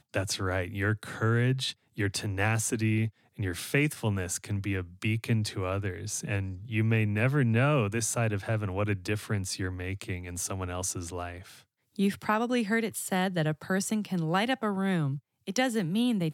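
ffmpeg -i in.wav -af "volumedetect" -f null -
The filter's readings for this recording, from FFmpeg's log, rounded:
mean_volume: -29.5 dB
max_volume: -12.4 dB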